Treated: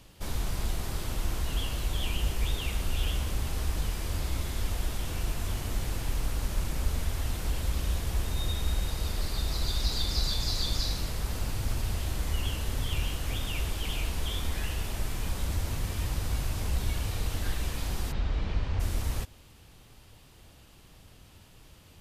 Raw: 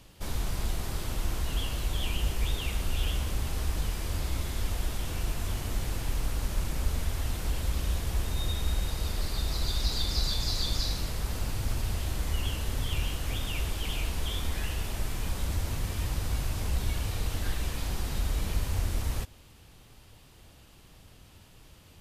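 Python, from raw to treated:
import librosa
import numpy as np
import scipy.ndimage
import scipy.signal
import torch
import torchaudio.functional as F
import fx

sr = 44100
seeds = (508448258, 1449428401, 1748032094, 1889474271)

y = fx.bessel_lowpass(x, sr, hz=3300.0, order=4, at=(18.11, 18.79), fade=0.02)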